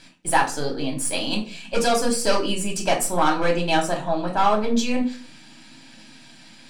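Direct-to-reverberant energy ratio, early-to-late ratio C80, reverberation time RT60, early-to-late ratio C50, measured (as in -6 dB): -0.5 dB, 15.5 dB, 0.40 s, 10.5 dB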